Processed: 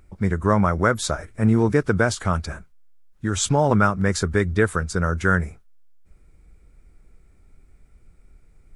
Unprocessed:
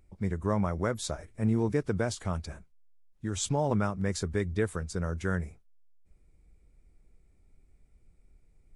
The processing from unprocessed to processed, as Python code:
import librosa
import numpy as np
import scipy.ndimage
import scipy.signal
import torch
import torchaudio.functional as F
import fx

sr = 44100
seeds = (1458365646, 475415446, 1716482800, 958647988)

y = fx.peak_eq(x, sr, hz=1400.0, db=8.0, octaves=0.67)
y = y * 10.0 ** (9.0 / 20.0)